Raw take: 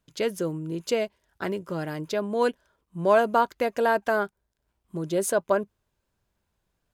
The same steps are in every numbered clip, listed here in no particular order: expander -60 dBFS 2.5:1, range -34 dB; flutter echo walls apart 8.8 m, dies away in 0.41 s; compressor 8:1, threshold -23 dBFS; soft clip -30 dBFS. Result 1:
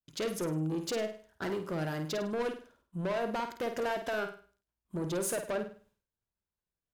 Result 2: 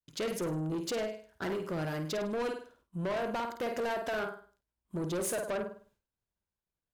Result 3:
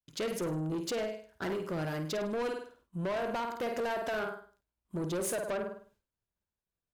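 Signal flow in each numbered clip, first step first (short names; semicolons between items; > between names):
expander > compressor > soft clip > flutter echo; compressor > flutter echo > expander > soft clip; flutter echo > compressor > expander > soft clip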